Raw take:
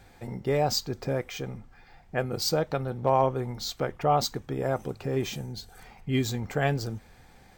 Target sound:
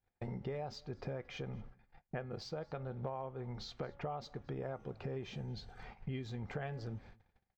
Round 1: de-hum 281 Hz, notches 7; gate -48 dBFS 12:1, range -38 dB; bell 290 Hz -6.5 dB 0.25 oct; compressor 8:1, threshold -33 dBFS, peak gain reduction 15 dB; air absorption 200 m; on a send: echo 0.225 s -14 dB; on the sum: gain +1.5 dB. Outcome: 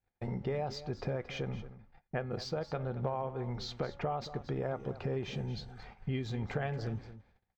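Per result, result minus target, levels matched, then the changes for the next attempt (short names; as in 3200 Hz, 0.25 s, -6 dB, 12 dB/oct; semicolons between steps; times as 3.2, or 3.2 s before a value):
echo-to-direct +11 dB; compressor: peak gain reduction -6 dB
change: echo 0.225 s -25 dB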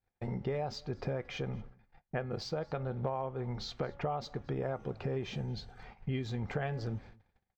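compressor: peak gain reduction -6 dB
change: compressor 8:1, threshold -40 dBFS, peak gain reduction 21 dB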